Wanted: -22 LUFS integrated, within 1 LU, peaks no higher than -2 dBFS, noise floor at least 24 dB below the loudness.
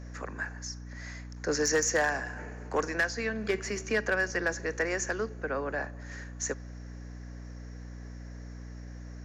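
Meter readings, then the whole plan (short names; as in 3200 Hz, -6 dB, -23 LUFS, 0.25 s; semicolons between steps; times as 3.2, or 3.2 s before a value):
clipped 0.3%; flat tops at -20.0 dBFS; hum 60 Hz; harmonics up to 300 Hz; hum level -40 dBFS; loudness -31.5 LUFS; peak -20.0 dBFS; loudness target -22.0 LUFS
-> clip repair -20 dBFS; notches 60/120/180/240/300 Hz; gain +9.5 dB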